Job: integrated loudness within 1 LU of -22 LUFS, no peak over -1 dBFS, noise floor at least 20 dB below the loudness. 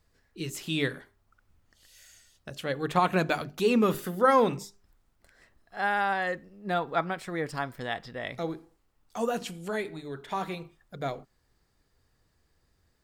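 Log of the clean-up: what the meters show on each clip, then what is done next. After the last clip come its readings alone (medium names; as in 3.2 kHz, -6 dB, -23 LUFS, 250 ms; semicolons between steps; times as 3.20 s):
loudness -29.5 LUFS; peak level -10.0 dBFS; loudness target -22.0 LUFS
-> trim +7.5 dB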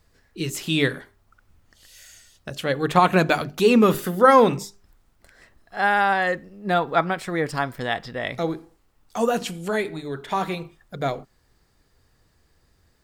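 loudness -22.0 LUFS; peak level -2.5 dBFS; noise floor -64 dBFS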